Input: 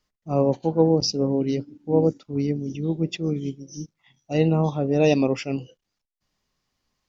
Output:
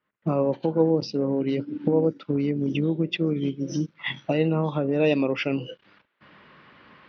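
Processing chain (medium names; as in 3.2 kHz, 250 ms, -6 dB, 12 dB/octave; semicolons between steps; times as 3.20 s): recorder AGC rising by 78 dB/s; level-controlled noise filter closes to 2.2 kHz, open at -19.5 dBFS; cabinet simulation 190–3500 Hz, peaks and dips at 250 Hz -4 dB, 410 Hz -3 dB, 740 Hz -8 dB, 1.5 kHz +4 dB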